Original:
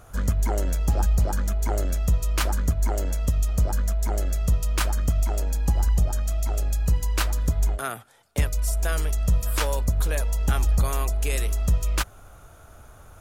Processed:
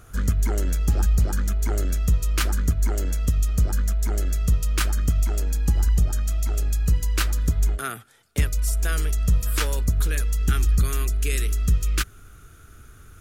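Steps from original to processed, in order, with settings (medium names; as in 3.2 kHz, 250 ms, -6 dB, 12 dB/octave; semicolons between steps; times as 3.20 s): high-order bell 740 Hz -8.5 dB 1.2 oct, from 10.08 s -15.5 dB; trim +1.5 dB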